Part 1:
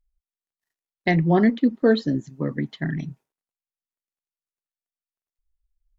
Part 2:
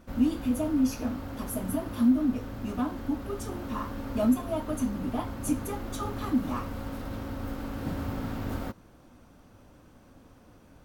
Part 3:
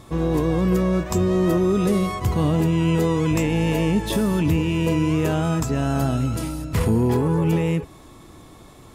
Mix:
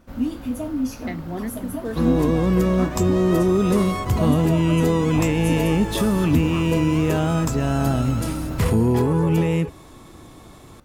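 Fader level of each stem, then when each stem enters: −12.5, +0.5, +1.0 decibels; 0.00, 0.00, 1.85 seconds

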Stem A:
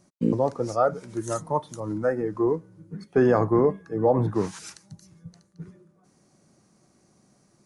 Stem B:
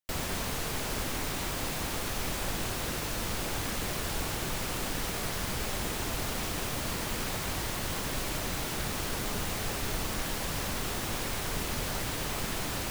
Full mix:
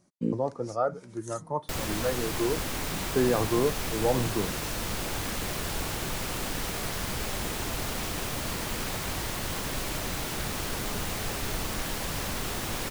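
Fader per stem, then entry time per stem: −5.5, +1.0 decibels; 0.00, 1.60 seconds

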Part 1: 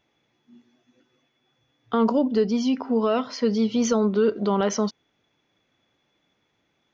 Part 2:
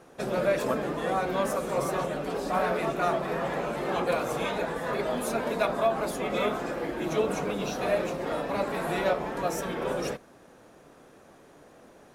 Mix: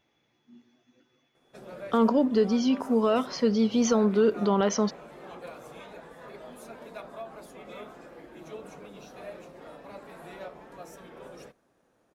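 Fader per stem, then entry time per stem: −1.5, −15.5 decibels; 0.00, 1.35 seconds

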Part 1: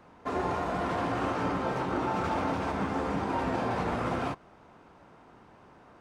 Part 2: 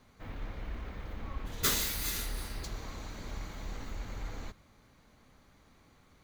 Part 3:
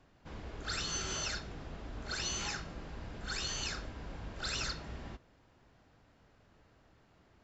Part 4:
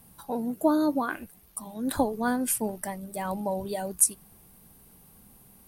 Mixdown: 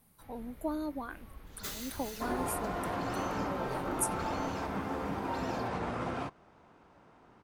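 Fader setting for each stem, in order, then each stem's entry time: −5.0, −12.0, −15.0, −12.0 decibels; 1.95, 0.00, 0.90, 0.00 seconds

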